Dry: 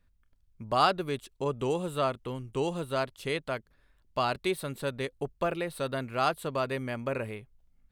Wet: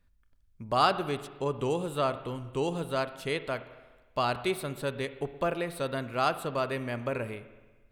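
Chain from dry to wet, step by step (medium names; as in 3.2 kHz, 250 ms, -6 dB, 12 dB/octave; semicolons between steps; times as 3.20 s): spring tank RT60 1.3 s, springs 41/58 ms, chirp 75 ms, DRR 12 dB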